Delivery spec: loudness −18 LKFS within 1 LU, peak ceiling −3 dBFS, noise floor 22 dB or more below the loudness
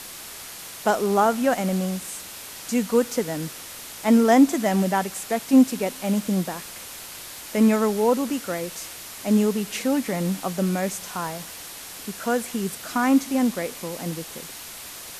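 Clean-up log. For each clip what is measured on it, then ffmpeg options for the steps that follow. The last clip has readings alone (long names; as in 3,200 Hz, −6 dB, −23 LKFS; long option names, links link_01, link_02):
background noise floor −39 dBFS; target noise floor −45 dBFS; integrated loudness −23.0 LKFS; sample peak −6.5 dBFS; target loudness −18.0 LKFS
→ -af "afftdn=noise_reduction=6:noise_floor=-39"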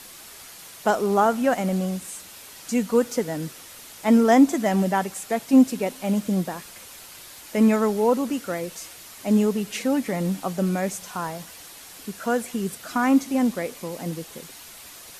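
background noise floor −44 dBFS; target noise floor −45 dBFS
→ -af "afftdn=noise_reduction=6:noise_floor=-44"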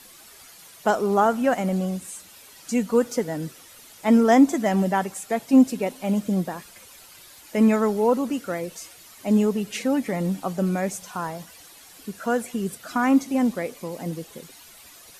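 background noise floor −48 dBFS; integrated loudness −23.0 LKFS; sample peak −7.0 dBFS; target loudness −18.0 LKFS
→ -af "volume=5dB,alimiter=limit=-3dB:level=0:latency=1"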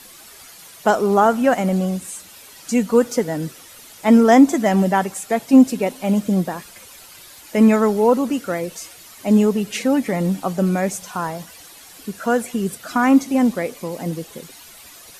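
integrated loudness −18.5 LKFS; sample peak −3.0 dBFS; background noise floor −43 dBFS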